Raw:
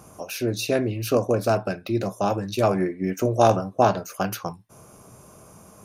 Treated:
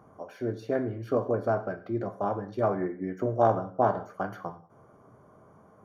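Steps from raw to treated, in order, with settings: Savitzky-Golay filter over 41 samples; bass shelf 84 Hz -10.5 dB; gated-style reverb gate 220 ms falling, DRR 9.5 dB; trim -5.5 dB

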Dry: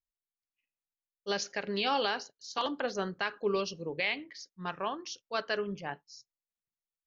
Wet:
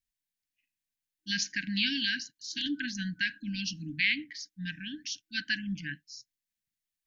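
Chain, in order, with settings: FFT band-reject 320–1500 Hz; trim +5 dB

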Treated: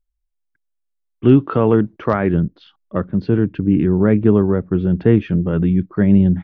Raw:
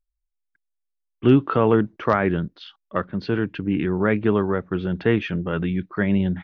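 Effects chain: tilt shelf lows +4 dB, about 660 Hz, from 2.33 s lows +8.5 dB; trim +1.5 dB

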